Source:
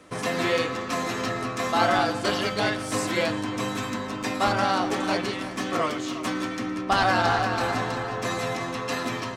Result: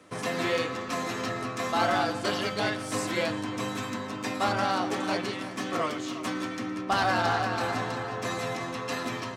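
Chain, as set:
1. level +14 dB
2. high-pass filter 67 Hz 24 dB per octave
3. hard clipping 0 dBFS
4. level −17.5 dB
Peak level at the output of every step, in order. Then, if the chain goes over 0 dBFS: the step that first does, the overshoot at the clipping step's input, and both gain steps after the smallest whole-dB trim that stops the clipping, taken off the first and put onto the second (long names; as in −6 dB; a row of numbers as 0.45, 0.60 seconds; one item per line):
+5.5, +5.0, 0.0, −17.5 dBFS
step 1, 5.0 dB
step 1 +9 dB, step 4 −12.5 dB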